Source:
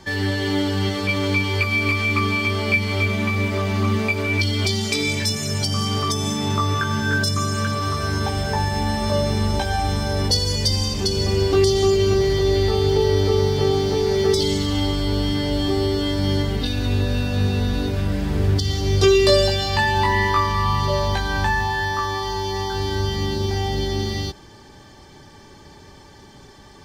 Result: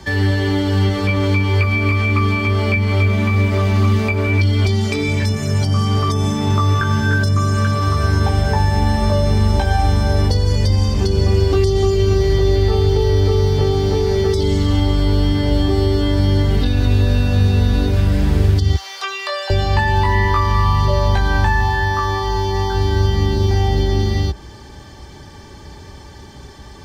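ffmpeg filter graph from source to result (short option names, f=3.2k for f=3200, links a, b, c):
-filter_complex "[0:a]asettb=1/sr,asplit=3[a][b][c];[a]atrim=end=18.764[d];[b]atrim=start=18.76:end=19.5,asetpts=PTS-STARTPTS,afade=t=in:d=0.004:c=qsin,afade=t=out:st=0.736:d=0.004:c=qsin,acrossover=split=4500[e][f];[f]acompressor=threshold=-32dB:ratio=4:attack=1:release=60[g];[e][g]amix=inputs=2:normalize=0,highpass=f=880:w=0.5412,highpass=f=880:w=1.3066,aeval=exprs='sgn(val(0))*max(abs(val(0))-0.00168,0)':c=same[h];[c]atrim=start=19.496[i];[d][h]acrossfade=d=0.004:c1=hsin:c2=qsin[j];[j][i]acrossfade=d=0.004:c1=qsin:c2=hsin,equalizer=f=62:w=1.2:g=10,acrossover=split=92|2200[k][l][m];[k]acompressor=threshold=-20dB:ratio=4[n];[l]acompressor=threshold=-20dB:ratio=4[o];[m]acompressor=threshold=-38dB:ratio=4[p];[n][o][p]amix=inputs=3:normalize=0,volume=5dB"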